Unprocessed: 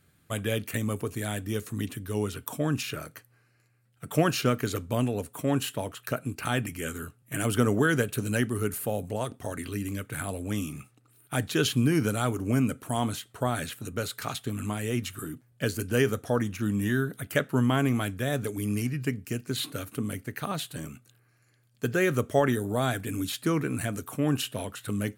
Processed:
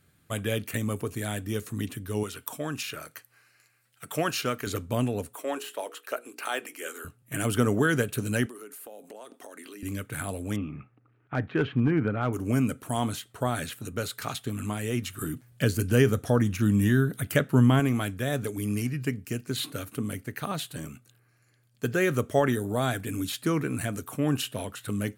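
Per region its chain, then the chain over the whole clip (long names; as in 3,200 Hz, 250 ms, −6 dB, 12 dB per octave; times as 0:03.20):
0:02.23–0:04.67: low-shelf EQ 370 Hz −10 dB + one half of a high-frequency compander encoder only
0:05.35–0:07.05: high-pass filter 370 Hz 24 dB per octave + de-essing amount 70% + mains-hum notches 60/120/180/240/300/360/420/480 Hz
0:08.46–0:09.83: high-pass filter 280 Hz 24 dB per octave + downward compressor, threshold −41 dBFS
0:10.56–0:12.33: low-pass filter 2,200 Hz 24 dB per octave + hard clipping −16.5 dBFS
0:15.21–0:17.80: low-shelf EQ 250 Hz +8 dB + one half of a high-frequency compander encoder only
whole clip: no processing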